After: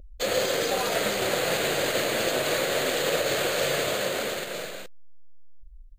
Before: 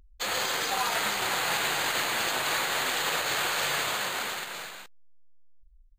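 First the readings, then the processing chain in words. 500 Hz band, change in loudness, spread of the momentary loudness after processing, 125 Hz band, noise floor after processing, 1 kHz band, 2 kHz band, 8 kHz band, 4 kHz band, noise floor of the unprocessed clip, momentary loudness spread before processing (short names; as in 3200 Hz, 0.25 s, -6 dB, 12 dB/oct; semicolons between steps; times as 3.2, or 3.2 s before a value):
+11.5 dB, +1.5 dB, 6 LU, +8.0 dB, -46 dBFS, -1.5 dB, -0.5 dB, +0.5 dB, +0.5 dB, -56 dBFS, 7 LU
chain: in parallel at -3 dB: compressor, threshold -38 dBFS, peak gain reduction 13 dB; on the sum: resonant low shelf 710 Hz +7 dB, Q 3; gain -1 dB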